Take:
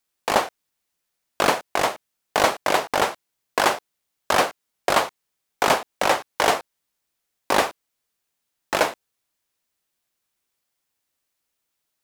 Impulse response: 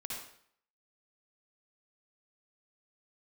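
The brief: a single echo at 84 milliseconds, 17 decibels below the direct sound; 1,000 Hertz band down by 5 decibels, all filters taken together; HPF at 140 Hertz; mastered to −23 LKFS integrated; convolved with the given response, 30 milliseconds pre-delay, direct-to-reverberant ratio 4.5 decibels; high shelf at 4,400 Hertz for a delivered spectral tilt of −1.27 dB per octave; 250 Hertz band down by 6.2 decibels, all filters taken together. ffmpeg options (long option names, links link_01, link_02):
-filter_complex "[0:a]highpass=140,equalizer=frequency=250:width_type=o:gain=-8,equalizer=frequency=1000:width_type=o:gain=-6.5,highshelf=frequency=4400:gain=6.5,aecho=1:1:84:0.141,asplit=2[link_01][link_02];[1:a]atrim=start_sample=2205,adelay=30[link_03];[link_02][link_03]afir=irnorm=-1:irlink=0,volume=-4.5dB[link_04];[link_01][link_04]amix=inputs=2:normalize=0,volume=0.5dB"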